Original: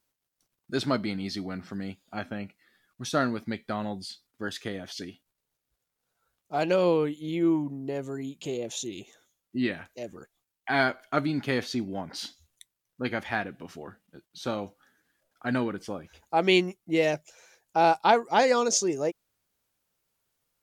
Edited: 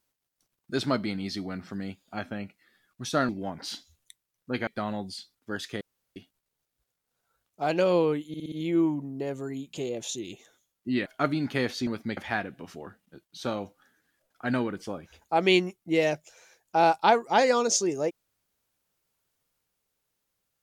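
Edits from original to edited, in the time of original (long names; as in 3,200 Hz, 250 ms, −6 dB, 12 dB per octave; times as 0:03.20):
0:03.29–0:03.59: swap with 0:11.80–0:13.18
0:04.73–0:05.08: fill with room tone
0:07.20: stutter 0.06 s, 5 plays
0:09.74–0:10.99: remove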